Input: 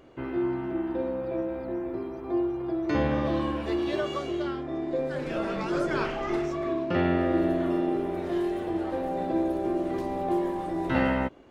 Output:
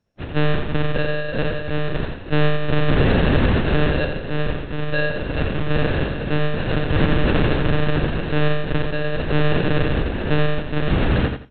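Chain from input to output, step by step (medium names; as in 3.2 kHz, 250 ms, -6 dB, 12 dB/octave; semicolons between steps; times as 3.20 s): 1.53–3.88 s: companding laws mixed up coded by mu; bass shelf 270 Hz +9.5 dB; doubling 25 ms -13.5 dB; sample-rate reducer 1.1 kHz, jitter 0%; peak limiter -17.5 dBFS, peak gain reduction 8.5 dB; monotone LPC vocoder at 8 kHz 150 Hz; dynamic bell 690 Hz, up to -5 dB, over -42 dBFS, Q 1.2; expander -23 dBFS; feedback delay 85 ms, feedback 23%, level -6.5 dB; trim +8 dB; MP2 96 kbps 22.05 kHz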